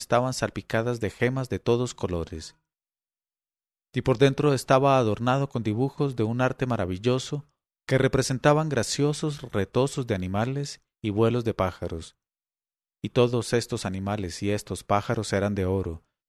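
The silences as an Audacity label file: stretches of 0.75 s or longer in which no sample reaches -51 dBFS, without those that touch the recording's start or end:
2.510000	3.940000	silence
12.110000	13.040000	silence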